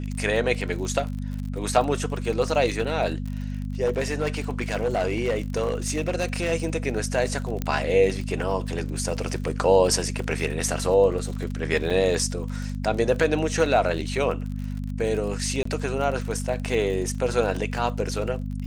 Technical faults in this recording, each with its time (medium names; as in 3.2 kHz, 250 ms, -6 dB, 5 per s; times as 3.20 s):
crackle 41 per s -31 dBFS
hum 50 Hz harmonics 5 -30 dBFS
3.85–6.53 s: clipped -19 dBFS
7.62 s: pop -13 dBFS
11.90–11.91 s: dropout 5.1 ms
15.63–15.65 s: dropout 24 ms